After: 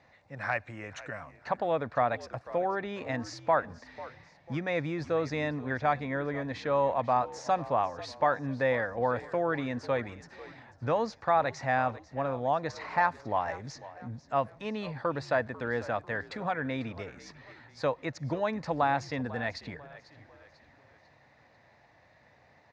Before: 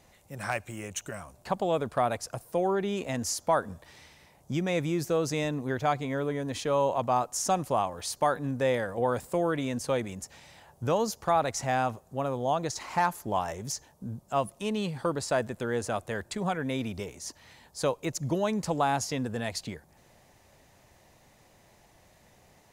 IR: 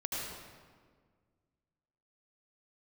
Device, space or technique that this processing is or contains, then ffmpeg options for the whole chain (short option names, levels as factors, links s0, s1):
frequency-shifting delay pedal into a guitar cabinet: -filter_complex "[0:a]asplit=5[s0][s1][s2][s3][s4];[s1]adelay=494,afreqshift=-74,volume=0.141[s5];[s2]adelay=988,afreqshift=-148,volume=0.0624[s6];[s3]adelay=1482,afreqshift=-222,volume=0.0272[s7];[s4]adelay=1976,afreqshift=-296,volume=0.012[s8];[s0][s5][s6][s7][s8]amix=inputs=5:normalize=0,highpass=100,equalizer=f=190:t=q:w=4:g=-9,equalizer=f=380:t=q:w=4:g=-8,equalizer=f=1800:t=q:w=4:g=6,equalizer=f=3100:t=q:w=4:g=-10,lowpass=f=4200:w=0.5412,lowpass=f=4200:w=1.3066"